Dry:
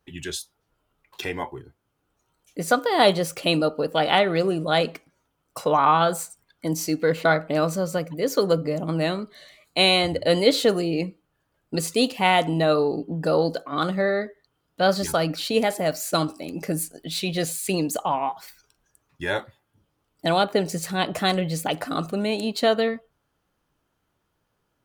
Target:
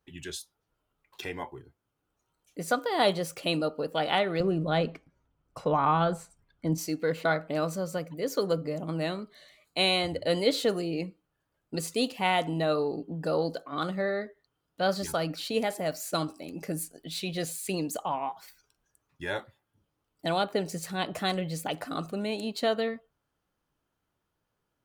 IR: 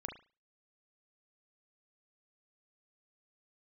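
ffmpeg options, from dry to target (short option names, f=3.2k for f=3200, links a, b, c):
-filter_complex "[0:a]asettb=1/sr,asplit=3[a][b][c];[a]atrim=end=4.404[d];[b]atrim=start=4.4:end=6.78,asetpts=PTS-STARTPTS,afade=t=in:d=0.004:c=qsin,afade=t=out:st=2.376:d=0.004:c=qsin,aemphasis=mode=reproduction:type=bsi[e];[c]atrim=start=6.776[f];[d][e]acrossfade=d=0.004:c1=hsin:c2=qsin[g];[g][f]acrossfade=d=0.004:c1=qsin:c2=hsin,volume=-7dB"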